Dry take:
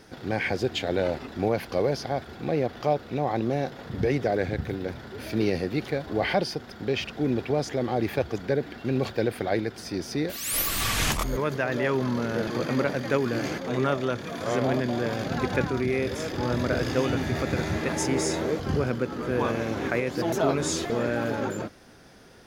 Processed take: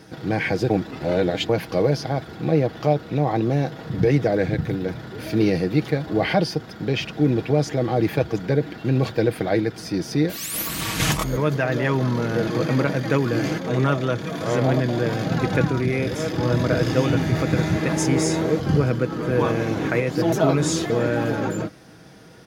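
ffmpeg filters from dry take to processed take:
ffmpeg -i in.wav -filter_complex "[0:a]asettb=1/sr,asplit=3[link_01][link_02][link_03];[link_01]atrim=end=10.464[link_04];[link_02]atrim=start=10.46:end=11,asetpts=PTS-STARTPTS,afade=type=in:duration=0.004:curve=qsin,afade=type=out:start_time=0.536:duration=0.004:curve=qsin,tremolo=f=220:d=0.974[link_05];[link_03]atrim=start=10.996[link_06];[link_04][link_05]acrossfade=duration=0.004:curve1=hsin:curve2=qsin[link_07];[link_07][link_06]acrossfade=duration=0.004:curve1=qsin:curve2=hsin,asplit=3[link_08][link_09][link_10];[link_08]atrim=end=0.702[link_11];[link_09]atrim=start=0.698:end=1.492,asetpts=PTS-STARTPTS,areverse[link_12];[link_10]atrim=start=1.488[link_13];[link_11][link_12]acrossfade=duration=0.004:curve1=hsin:curve2=hsin[link_14];[link_14][link_13]acrossfade=duration=0.004:curve1=hsin:curve2=hsin,highpass=90,lowshelf=frequency=210:gain=8.5,aecho=1:1:6.3:0.43,volume=2.5dB" out.wav

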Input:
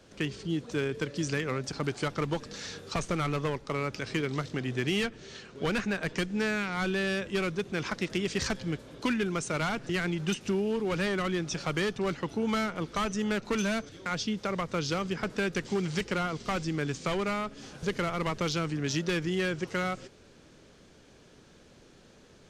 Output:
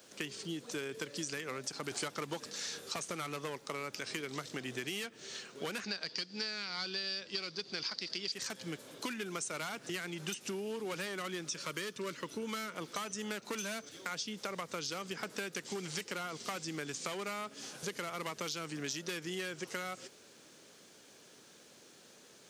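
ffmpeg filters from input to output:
ffmpeg -i in.wav -filter_complex "[0:a]asplit=3[link_01][link_02][link_03];[link_01]afade=type=out:start_time=1.9:duration=0.02[link_04];[link_02]acontrast=83,afade=type=in:start_time=1.9:duration=0.02,afade=type=out:start_time=2.49:duration=0.02[link_05];[link_03]afade=type=in:start_time=2.49:duration=0.02[link_06];[link_04][link_05][link_06]amix=inputs=3:normalize=0,asettb=1/sr,asplit=3[link_07][link_08][link_09];[link_07]atrim=end=5.844[link_10];[link_08]atrim=start=5.84:end=8.32,asetpts=PTS-STARTPTS,afade=type=in:duration=0.004:curve=qsin,afade=type=out:start_time=2.476:duration=0.004:curve=qsin,lowpass=frequency=4700:width_type=q:width=14[link_11];[link_09]atrim=start=8.316[link_12];[link_10][link_11]acrossfade=duration=0.004:curve1=hsin:curve2=qsin[link_13];[link_13][link_12]acrossfade=duration=0.004:curve1=qsin:curve2=hsin,asettb=1/sr,asplit=3[link_14][link_15][link_16];[link_14]atrim=end=11.454[link_17];[link_15]atrim=start=11.45:end=12.75,asetpts=PTS-STARTPTS,afade=type=in:duration=0.004:curve=qsin,afade=type=out:start_time=1.296:duration=0.004:curve=qsin,asuperstop=centerf=760:order=4:qfactor=3[link_18];[link_16]atrim=start=12.746[link_19];[link_17][link_18]acrossfade=duration=0.004:curve1=hsin:curve2=qsin[link_20];[link_20][link_19]acrossfade=duration=0.004:curve1=qsin:curve2=hsin,highpass=110,aemphasis=mode=production:type=bsi,acompressor=threshold=-34dB:ratio=6,volume=-2dB" out.wav

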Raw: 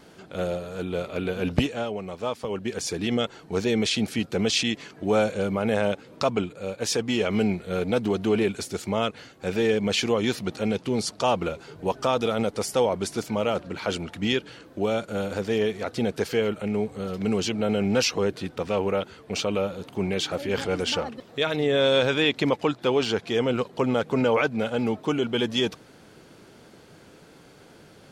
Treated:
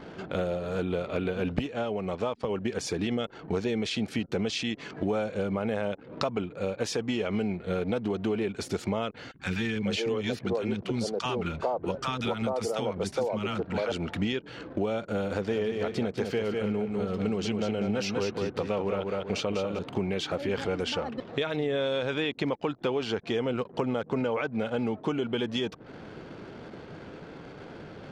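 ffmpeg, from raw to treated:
ffmpeg -i in.wav -filter_complex "[0:a]asettb=1/sr,asplit=3[link_01][link_02][link_03];[link_01]atrim=end=9.314[link_04];[link_02]atrim=start=9.31:end=13.92,asetpts=PTS-STARTPTS,afade=type=in:duration=0.004:curve=qsin,afade=type=out:start_time=4.606:duration=0.004:curve=qsin,acrossover=split=300|1000[link_05][link_06][link_07];[link_05]adelay=30[link_08];[link_06]adelay=420[link_09];[link_08][link_09][link_07]amix=inputs=3:normalize=0,atrim=end_sample=203301[link_10];[link_03]atrim=start=13.916[link_11];[link_04][link_10]acrossfade=duration=0.004:curve1=hsin:curve2=qsin[link_12];[link_12][link_11]acrossfade=duration=0.004:curve1=qsin:curve2=hsin,asettb=1/sr,asplit=3[link_13][link_14][link_15];[link_13]atrim=end=15.314[link_16];[link_14]atrim=start=15.31:end=19.79,asetpts=PTS-STARTPTS,afade=type=in:duration=0.004:curve=qsin,afade=type=out:start_time=4.476:duration=0.004:curve=qsin,aecho=1:1:197|394|591:0.531|0.122|0.0281,atrim=end_sample=197568[link_17];[link_15]atrim=start=19.786[link_18];[link_16][link_17]acrossfade=duration=0.004:curve1=hsin:curve2=qsin[link_19];[link_19][link_18]acrossfade=duration=0.004:curve1=qsin:curve2=hsin,acompressor=threshold=-34dB:ratio=6,lowpass=frequency=3300:poles=1,anlmdn=0.000398,volume=7.5dB" out.wav

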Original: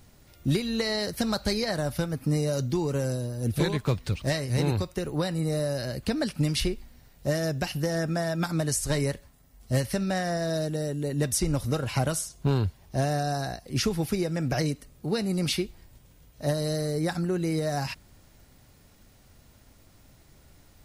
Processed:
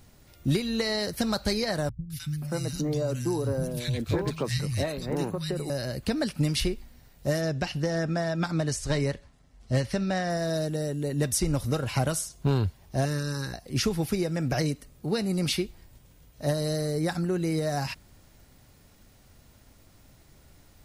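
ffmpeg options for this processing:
ffmpeg -i in.wav -filter_complex "[0:a]asettb=1/sr,asplit=3[link_01][link_02][link_03];[link_01]atrim=end=1.894[link_04];[link_02]atrim=start=1.89:end=5.7,asetpts=PTS-STARTPTS,afade=type=in:duration=0.004:curve=qsin,afade=type=out:start_time=3.806:duration=0.004:curve=qsin,acrossover=split=160|1800[link_05][link_06][link_07];[link_07]adelay=210[link_08];[link_06]adelay=530[link_09];[link_05][link_09][link_08]amix=inputs=3:normalize=0,atrim=end_sample=168021[link_10];[link_03]atrim=start=5.696[link_11];[link_04][link_10]acrossfade=duration=0.004:curve1=hsin:curve2=qsin[link_12];[link_12][link_11]acrossfade=duration=0.004:curve1=qsin:curve2=hsin,asettb=1/sr,asplit=3[link_13][link_14][link_15];[link_13]atrim=end=7.414[link_16];[link_14]atrim=start=7.41:end=10.3,asetpts=PTS-STARTPTS,afade=type=in:duration=0.004:curve=qsin,afade=type=out:start_time=2.886:duration=0.004:curve=qsin,lowpass=6200[link_17];[link_15]atrim=start=10.296[link_18];[link_16][link_17]acrossfade=duration=0.004:curve1=hsin:curve2=qsin[link_19];[link_19][link_18]acrossfade=duration=0.004:curve1=qsin:curve2=hsin,asettb=1/sr,asplit=3[link_20][link_21][link_22];[link_20]atrim=end=13.054[link_23];[link_21]atrim=start=13.05:end=13.54,asetpts=PTS-STARTPTS,afade=type=in:duration=0.004:curve=qsin,afade=type=out:start_time=0.486:duration=0.004:curve=qsin,asuperstop=centerf=700:order=4:qfactor=1.8[link_24];[link_22]atrim=start=13.536[link_25];[link_23][link_24]acrossfade=duration=0.004:curve1=hsin:curve2=qsin[link_26];[link_26][link_25]acrossfade=duration=0.004:curve1=qsin:curve2=hsin" out.wav

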